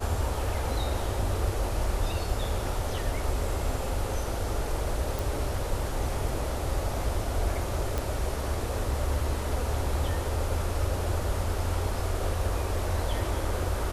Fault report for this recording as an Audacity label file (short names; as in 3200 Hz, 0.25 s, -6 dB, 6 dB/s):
5.190000	5.190000	pop
7.980000	7.980000	pop